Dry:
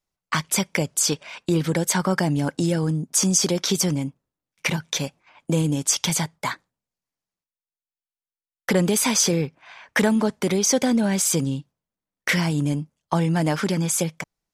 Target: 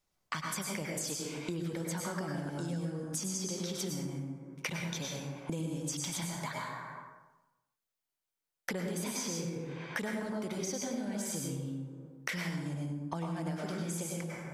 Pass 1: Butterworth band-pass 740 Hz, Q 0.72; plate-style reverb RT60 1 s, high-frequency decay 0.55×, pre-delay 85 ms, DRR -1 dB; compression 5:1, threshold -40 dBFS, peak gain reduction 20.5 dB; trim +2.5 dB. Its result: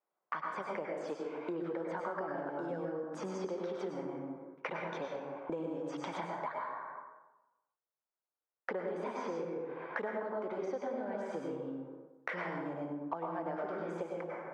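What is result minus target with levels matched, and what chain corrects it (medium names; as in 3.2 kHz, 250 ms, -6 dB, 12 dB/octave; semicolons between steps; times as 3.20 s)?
1 kHz band +6.5 dB
plate-style reverb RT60 1 s, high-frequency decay 0.55×, pre-delay 85 ms, DRR -1 dB; compression 5:1, threshold -40 dBFS, peak gain reduction 25 dB; trim +2.5 dB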